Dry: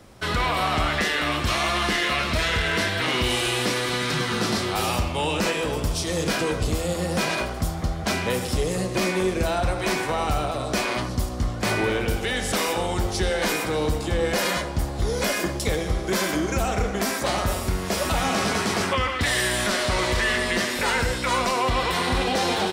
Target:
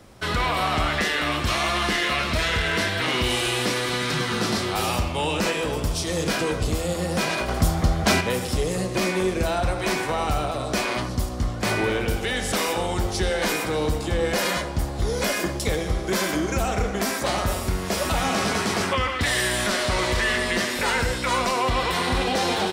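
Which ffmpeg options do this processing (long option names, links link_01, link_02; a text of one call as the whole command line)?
ffmpeg -i in.wav -filter_complex "[0:a]asettb=1/sr,asplit=3[link_01][link_02][link_03];[link_01]atrim=end=7.484[link_04];[link_02]atrim=start=7.48:end=8.21,asetpts=PTS-STARTPTS,afade=type=in:duration=0.004:curve=qsin,afade=type=out:start_time=0.726:duration=0.004:curve=qsin,acontrast=44[link_05];[link_03]atrim=start=8.206[link_06];[link_04][link_05]acrossfade=duration=0.004:curve1=hsin:curve2=qsin[link_07];[link_07][link_06]acrossfade=duration=0.004:curve1=qsin:curve2=hsin" out.wav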